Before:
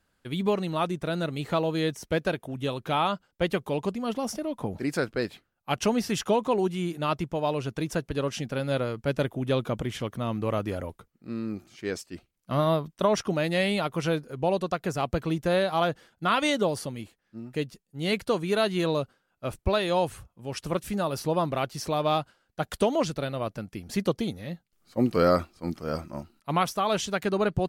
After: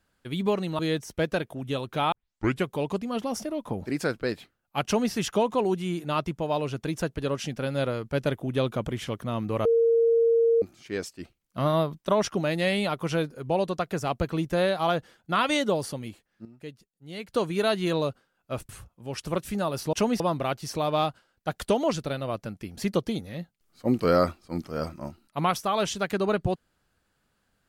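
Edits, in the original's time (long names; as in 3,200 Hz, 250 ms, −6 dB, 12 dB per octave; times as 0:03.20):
0:00.79–0:01.72: remove
0:03.05: tape start 0.53 s
0:05.78–0:06.05: duplicate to 0:21.32
0:10.58–0:11.55: beep over 461 Hz −17.5 dBFS
0:17.38–0:18.25: clip gain −11 dB
0:19.62–0:20.08: remove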